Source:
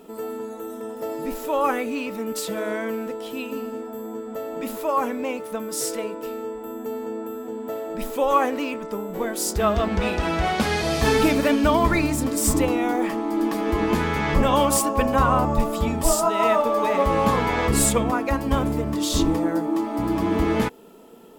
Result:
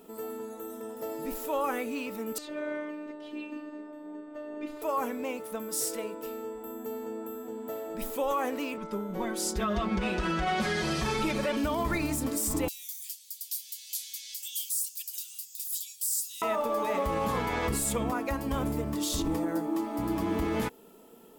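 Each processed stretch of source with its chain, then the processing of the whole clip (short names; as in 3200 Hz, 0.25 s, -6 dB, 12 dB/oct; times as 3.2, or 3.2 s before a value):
2.38–4.82 LPF 3300 Hz + comb 2.9 ms, depth 53% + robotiser 301 Hz
8.77–11.57 air absorption 53 m + comb 5.4 ms, depth 93%
12.68–16.42 inverse Chebyshev high-pass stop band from 1200 Hz, stop band 60 dB + tilt +3 dB/oct
whole clip: high shelf 8600 Hz +9.5 dB; limiter -13.5 dBFS; gain -7 dB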